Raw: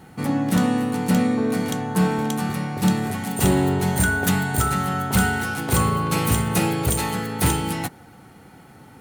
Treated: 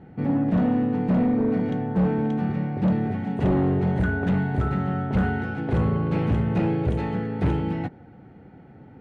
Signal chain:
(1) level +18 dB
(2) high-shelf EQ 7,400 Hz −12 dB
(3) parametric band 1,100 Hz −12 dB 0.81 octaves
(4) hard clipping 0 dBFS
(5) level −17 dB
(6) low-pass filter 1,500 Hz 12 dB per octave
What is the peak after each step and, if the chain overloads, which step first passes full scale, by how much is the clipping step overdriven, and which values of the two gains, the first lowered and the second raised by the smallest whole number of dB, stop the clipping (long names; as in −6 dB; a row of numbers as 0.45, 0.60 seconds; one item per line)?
+6.0, +6.0, +6.5, 0.0, −17.0, −16.5 dBFS
step 1, 6.5 dB
step 1 +11 dB, step 5 −10 dB